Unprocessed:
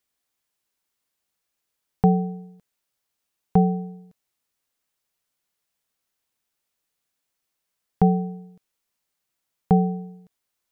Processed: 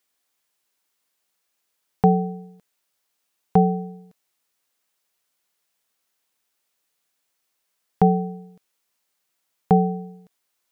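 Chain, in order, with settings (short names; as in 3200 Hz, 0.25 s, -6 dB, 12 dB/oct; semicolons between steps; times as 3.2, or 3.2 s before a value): low shelf 170 Hz -11 dB; gain +5 dB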